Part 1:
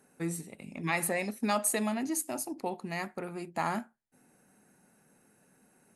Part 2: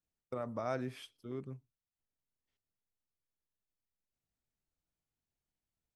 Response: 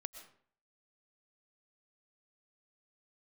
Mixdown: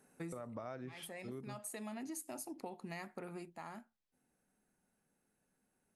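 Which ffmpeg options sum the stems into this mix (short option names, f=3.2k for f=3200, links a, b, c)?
-filter_complex "[0:a]volume=-4dB,afade=t=out:st=3.34:d=0.23:silence=0.237137[a];[1:a]lowpass=5.4k,volume=0.5dB,asplit=2[b][c];[c]apad=whole_len=262648[d];[a][d]sidechaincompress=threshold=-50dB:ratio=8:attack=23:release=783[e];[e][b]amix=inputs=2:normalize=0,acompressor=threshold=-42dB:ratio=6"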